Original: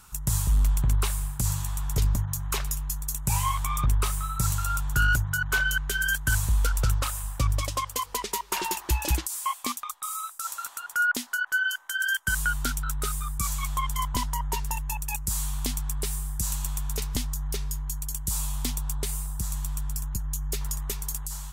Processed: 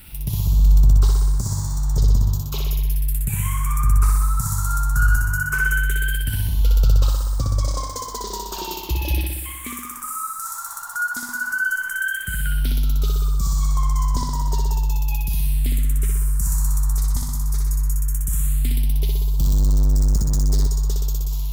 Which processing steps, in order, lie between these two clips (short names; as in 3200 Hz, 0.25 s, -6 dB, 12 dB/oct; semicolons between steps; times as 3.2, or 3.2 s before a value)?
zero-crossing step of -38 dBFS; on a send: flutter echo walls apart 10.6 m, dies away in 1.2 s; 19.39–20.67 on the sum: power-law curve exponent 0.5; phaser stages 4, 0.16 Hz, lowest notch 450–2600 Hz